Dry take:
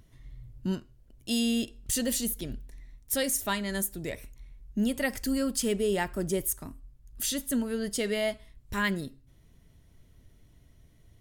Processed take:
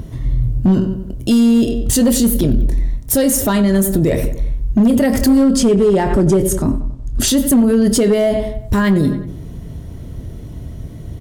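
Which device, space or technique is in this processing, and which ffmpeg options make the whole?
mastering chain: -filter_complex "[0:a]asettb=1/sr,asplit=3[a][b][c];[a]atrim=end=5.434[d];[b]atrim=start=5.43:end=7.28,asetpts=PTS-STARTPTS,afade=t=in:d=0.004:c=qsin,afade=t=out:st=1.846:d=0.004:c=qsin,lowpass=8k[e];[c]atrim=start=7.276[f];[d][e]acrossfade=d=0.004:c1=hsin:c2=qsin[g];[g][f]acrossfade=d=0.004:c1=qsin:c2=hsin,highpass=f=52:p=1,equalizer=f=2.1k:t=o:w=0.77:g=-3.5,asplit=2[h][i];[i]adelay=26,volume=-12dB[j];[h][j]amix=inputs=2:normalize=0,asplit=2[k][l];[l]adelay=93,lowpass=f=3.2k:p=1,volume=-16.5dB,asplit=2[m][n];[n]adelay=93,lowpass=f=3.2k:p=1,volume=0.46,asplit=2[o][p];[p]adelay=93,lowpass=f=3.2k:p=1,volume=0.46,asplit=2[q][r];[r]adelay=93,lowpass=f=3.2k:p=1,volume=0.46[s];[k][m][o][q][s]amix=inputs=5:normalize=0,acompressor=threshold=-29dB:ratio=3,asoftclip=type=tanh:threshold=-23dB,tiltshelf=f=930:g=6.5,asoftclip=type=hard:threshold=-23dB,alimiter=level_in=31dB:limit=-1dB:release=50:level=0:latency=1,volume=-6dB"

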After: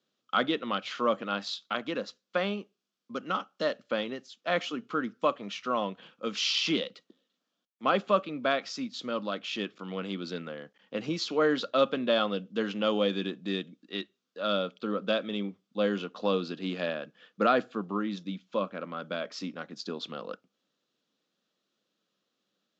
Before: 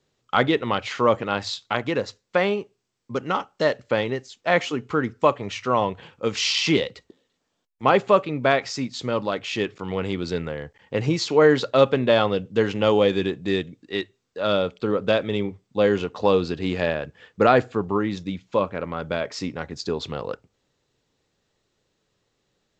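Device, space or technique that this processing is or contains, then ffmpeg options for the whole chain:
television speaker: -af "highpass=f=200:w=0.5412,highpass=f=200:w=1.3066,equalizer=f=200:t=q:w=4:g=5,equalizer=f=410:t=q:w=4:g=-7,equalizer=f=880:t=q:w=4:g=-8,equalizer=f=1.3k:t=q:w=4:g=4,equalizer=f=2k:t=q:w=4:g=-6,equalizer=f=3.3k:t=q:w=4:g=4,lowpass=f=6.5k:w=0.5412,lowpass=f=6.5k:w=1.3066,volume=-6.5dB"

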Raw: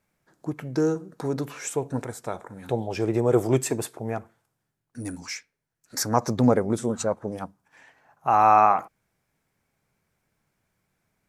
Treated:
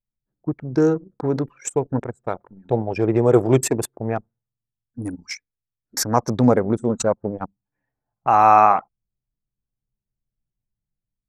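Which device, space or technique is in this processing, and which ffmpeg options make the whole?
voice memo with heavy noise removal: -af "anlmdn=25.1,dynaudnorm=f=110:g=5:m=5dB,volume=1dB"

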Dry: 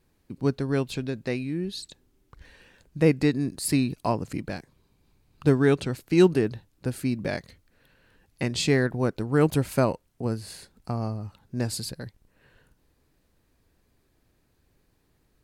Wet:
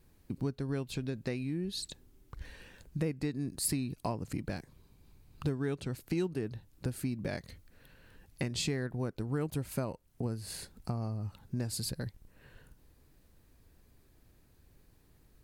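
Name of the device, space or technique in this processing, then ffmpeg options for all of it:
ASMR close-microphone chain: -af "lowshelf=f=160:g=6.5,acompressor=threshold=-33dB:ratio=4,highshelf=f=9.8k:g=7"

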